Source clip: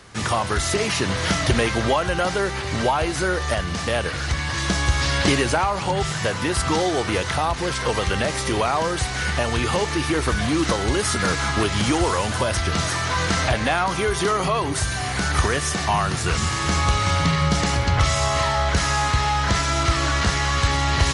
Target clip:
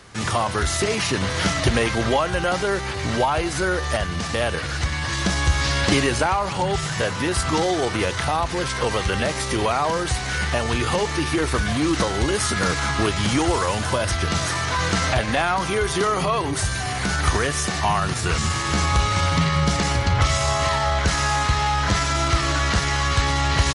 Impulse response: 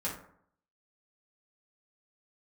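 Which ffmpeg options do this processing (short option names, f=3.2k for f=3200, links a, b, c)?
-af "atempo=0.89"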